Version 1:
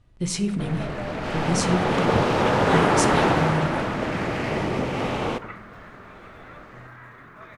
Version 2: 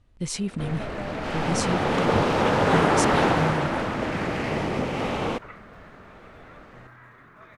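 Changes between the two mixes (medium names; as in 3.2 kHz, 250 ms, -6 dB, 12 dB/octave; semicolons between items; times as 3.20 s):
second sound -5.0 dB; reverb: off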